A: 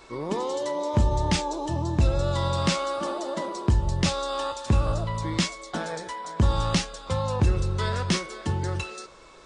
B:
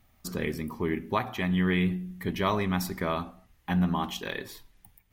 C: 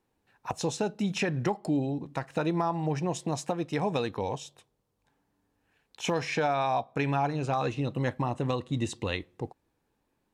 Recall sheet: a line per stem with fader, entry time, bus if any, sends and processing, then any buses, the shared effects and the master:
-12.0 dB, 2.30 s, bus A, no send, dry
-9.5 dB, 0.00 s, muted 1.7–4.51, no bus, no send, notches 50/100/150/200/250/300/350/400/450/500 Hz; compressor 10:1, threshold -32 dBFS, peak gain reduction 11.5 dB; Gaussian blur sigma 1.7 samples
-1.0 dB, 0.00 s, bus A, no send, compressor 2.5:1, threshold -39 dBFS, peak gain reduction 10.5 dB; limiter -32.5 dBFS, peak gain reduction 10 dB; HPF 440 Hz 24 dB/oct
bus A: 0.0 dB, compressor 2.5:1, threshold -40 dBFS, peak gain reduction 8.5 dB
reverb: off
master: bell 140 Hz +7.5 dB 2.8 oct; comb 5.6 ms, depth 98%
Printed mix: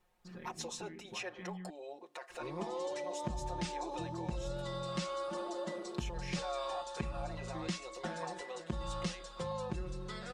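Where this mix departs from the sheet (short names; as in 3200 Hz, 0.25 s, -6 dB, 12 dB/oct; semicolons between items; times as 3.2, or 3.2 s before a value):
stem B -9.5 dB -> -16.0 dB; master: missing bell 140 Hz +7.5 dB 2.8 oct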